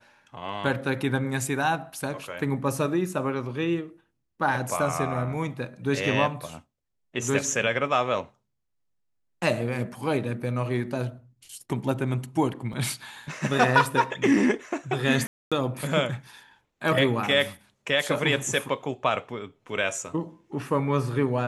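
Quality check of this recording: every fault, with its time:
12.73 s: dropout 2.6 ms
15.27–15.52 s: dropout 246 ms

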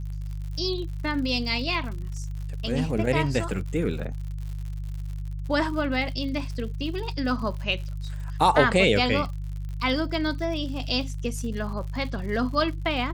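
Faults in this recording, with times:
crackle 82 per s -35 dBFS
hum 50 Hz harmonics 3 -32 dBFS

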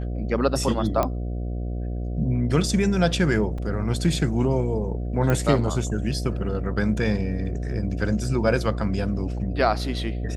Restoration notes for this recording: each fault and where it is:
buzz 60 Hz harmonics 12 -28 dBFS
1.03 s: pop -10 dBFS
3.58 s: dropout 3.6 ms
5.30 s: pop -11 dBFS

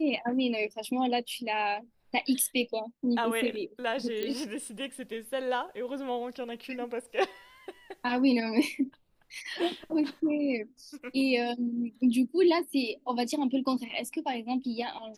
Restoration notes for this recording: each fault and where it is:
4.23 s: pop -19 dBFS

